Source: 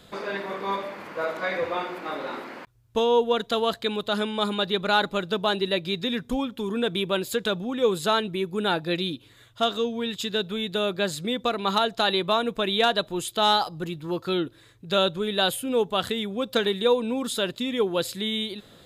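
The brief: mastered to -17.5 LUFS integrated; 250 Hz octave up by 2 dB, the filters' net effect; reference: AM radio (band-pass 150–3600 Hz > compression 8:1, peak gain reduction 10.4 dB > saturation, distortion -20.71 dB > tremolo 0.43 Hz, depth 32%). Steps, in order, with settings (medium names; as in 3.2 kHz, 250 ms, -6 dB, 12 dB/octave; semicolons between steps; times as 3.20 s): band-pass 150–3600 Hz; peaking EQ 250 Hz +3.5 dB; compression 8:1, threshold -25 dBFS; saturation -20 dBFS; tremolo 0.43 Hz, depth 32%; trim +15.5 dB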